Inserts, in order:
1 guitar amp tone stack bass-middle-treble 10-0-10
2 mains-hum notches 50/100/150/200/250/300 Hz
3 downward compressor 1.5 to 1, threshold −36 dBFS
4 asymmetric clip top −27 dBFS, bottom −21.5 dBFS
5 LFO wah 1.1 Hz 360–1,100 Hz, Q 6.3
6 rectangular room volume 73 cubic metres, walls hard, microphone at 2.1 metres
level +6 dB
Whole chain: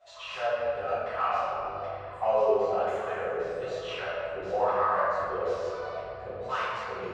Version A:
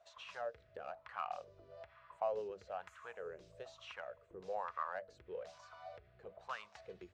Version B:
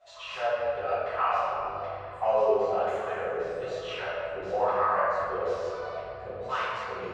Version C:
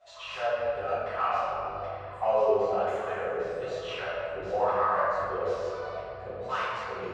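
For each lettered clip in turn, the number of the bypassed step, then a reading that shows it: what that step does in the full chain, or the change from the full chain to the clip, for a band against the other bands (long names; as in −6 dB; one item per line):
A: 6, echo-to-direct ratio 16.0 dB to none audible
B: 4, distortion level −15 dB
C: 2, 125 Hz band +1.5 dB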